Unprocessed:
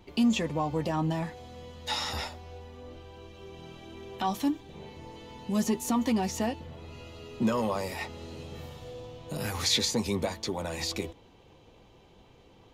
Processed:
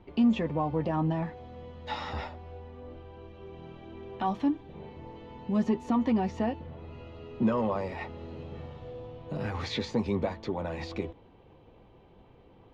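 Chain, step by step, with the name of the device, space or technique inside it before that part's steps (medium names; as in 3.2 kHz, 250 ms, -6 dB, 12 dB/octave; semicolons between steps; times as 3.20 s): phone in a pocket (low-pass 3.2 kHz 12 dB/octave; treble shelf 2.4 kHz -9.5 dB); trim +1 dB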